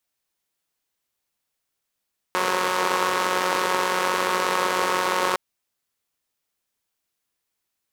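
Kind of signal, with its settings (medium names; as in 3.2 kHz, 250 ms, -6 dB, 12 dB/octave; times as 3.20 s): four-cylinder engine model, steady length 3.01 s, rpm 5500, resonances 490/990 Hz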